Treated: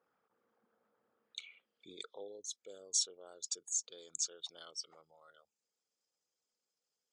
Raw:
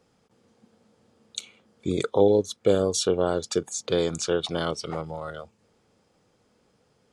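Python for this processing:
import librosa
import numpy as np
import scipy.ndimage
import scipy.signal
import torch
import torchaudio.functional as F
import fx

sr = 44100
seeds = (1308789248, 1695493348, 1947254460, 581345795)

y = fx.envelope_sharpen(x, sr, power=1.5)
y = fx.filter_sweep_bandpass(y, sr, from_hz=1400.0, to_hz=7100.0, start_s=1.11, end_s=2.45, q=1.9)
y = y * librosa.db_to_amplitude(-2.0)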